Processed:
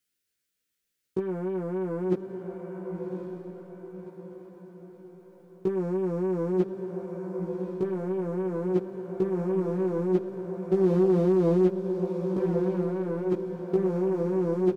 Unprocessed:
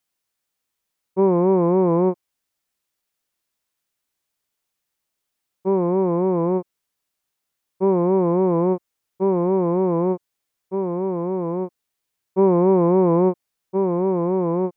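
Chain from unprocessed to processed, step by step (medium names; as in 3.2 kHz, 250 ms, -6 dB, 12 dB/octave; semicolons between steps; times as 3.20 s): high-order bell 850 Hz -15 dB 1.1 oct; waveshaping leveller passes 2; compressor with a negative ratio -20 dBFS, ratio -0.5; doubling 16 ms -2.5 dB; echo that smears into a reverb 1119 ms, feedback 45%, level -6 dB; loudspeaker Doppler distortion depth 0.3 ms; trim -6.5 dB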